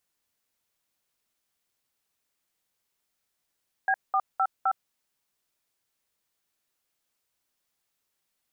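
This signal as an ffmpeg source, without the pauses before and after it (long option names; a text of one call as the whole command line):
ffmpeg -f lavfi -i "aevalsrc='0.0668*clip(min(mod(t,0.258),0.061-mod(t,0.258))/0.002,0,1)*(eq(floor(t/0.258),0)*(sin(2*PI*770*mod(t,0.258))+sin(2*PI*1633*mod(t,0.258)))+eq(floor(t/0.258),1)*(sin(2*PI*770*mod(t,0.258))+sin(2*PI*1209*mod(t,0.258)))+eq(floor(t/0.258),2)*(sin(2*PI*770*mod(t,0.258))+sin(2*PI*1336*mod(t,0.258)))+eq(floor(t/0.258),3)*(sin(2*PI*770*mod(t,0.258))+sin(2*PI*1336*mod(t,0.258))))':duration=1.032:sample_rate=44100" out.wav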